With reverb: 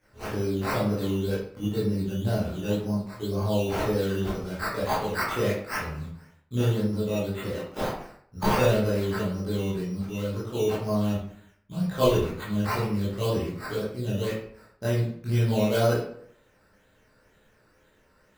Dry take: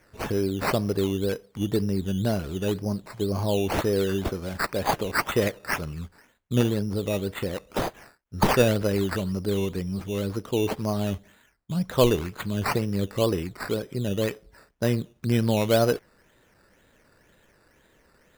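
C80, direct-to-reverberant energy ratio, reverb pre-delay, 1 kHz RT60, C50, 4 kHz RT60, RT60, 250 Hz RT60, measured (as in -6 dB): 6.5 dB, -10.5 dB, 15 ms, 0.60 s, 2.0 dB, 0.40 s, 0.60 s, 0.65 s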